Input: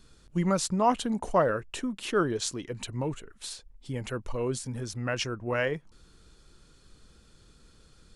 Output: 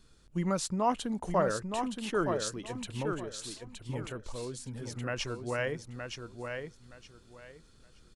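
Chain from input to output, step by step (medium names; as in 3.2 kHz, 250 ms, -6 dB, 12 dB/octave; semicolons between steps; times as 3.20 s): 4.07–4.92 s: compression, threshold -31 dBFS, peak gain reduction 6.5 dB; feedback delay 919 ms, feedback 22%, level -6 dB; trim -4.5 dB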